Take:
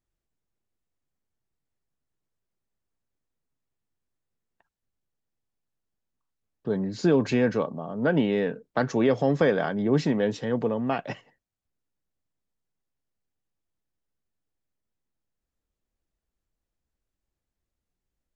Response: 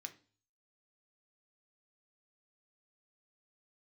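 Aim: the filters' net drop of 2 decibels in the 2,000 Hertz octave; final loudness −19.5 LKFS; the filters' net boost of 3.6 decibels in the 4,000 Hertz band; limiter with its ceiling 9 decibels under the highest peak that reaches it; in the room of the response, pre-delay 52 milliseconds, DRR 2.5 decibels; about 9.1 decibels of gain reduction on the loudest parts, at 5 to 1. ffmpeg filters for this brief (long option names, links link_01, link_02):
-filter_complex "[0:a]equalizer=frequency=2000:width_type=o:gain=-4,equalizer=frequency=4000:width_type=o:gain=6,acompressor=threshold=-27dB:ratio=5,alimiter=level_in=0.5dB:limit=-24dB:level=0:latency=1,volume=-0.5dB,asplit=2[link_01][link_02];[1:a]atrim=start_sample=2205,adelay=52[link_03];[link_02][link_03]afir=irnorm=-1:irlink=0,volume=2dB[link_04];[link_01][link_04]amix=inputs=2:normalize=0,volume=13.5dB"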